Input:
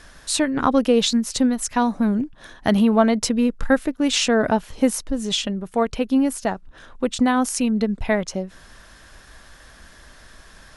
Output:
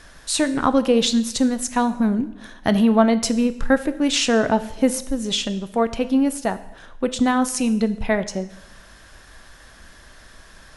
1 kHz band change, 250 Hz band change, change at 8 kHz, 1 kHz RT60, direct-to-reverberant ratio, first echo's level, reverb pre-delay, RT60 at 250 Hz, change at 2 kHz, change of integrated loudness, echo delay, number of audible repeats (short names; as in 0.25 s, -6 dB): +0.5 dB, +0.5 dB, +0.5 dB, 0.85 s, 11.5 dB, none, 5 ms, 0.90 s, +0.5 dB, +0.5 dB, none, none